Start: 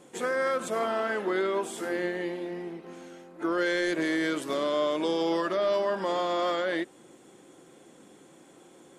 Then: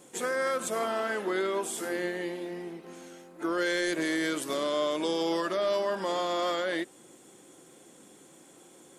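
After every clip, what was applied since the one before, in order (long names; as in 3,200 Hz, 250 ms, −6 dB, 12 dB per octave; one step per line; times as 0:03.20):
high-shelf EQ 5,600 Hz +11.5 dB
level −2 dB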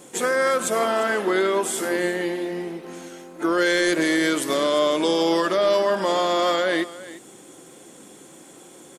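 single-tap delay 348 ms −17 dB
level +8.5 dB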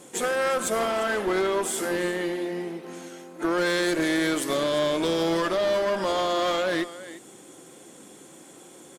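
asymmetric clip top −21.5 dBFS
level −2 dB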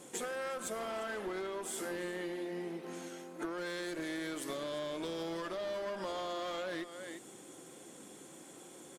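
downward compressor 6 to 1, threshold −32 dBFS, peak gain reduction 11 dB
level −5 dB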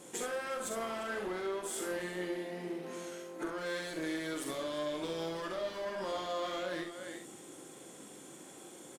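ambience of single reflections 44 ms −6 dB, 67 ms −7 dB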